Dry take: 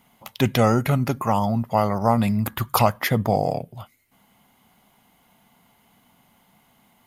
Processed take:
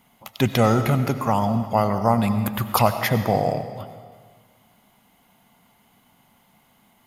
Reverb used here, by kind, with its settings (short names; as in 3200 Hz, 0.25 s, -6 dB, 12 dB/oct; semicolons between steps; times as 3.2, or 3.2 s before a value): digital reverb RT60 1.7 s, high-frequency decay 0.9×, pre-delay 55 ms, DRR 9.5 dB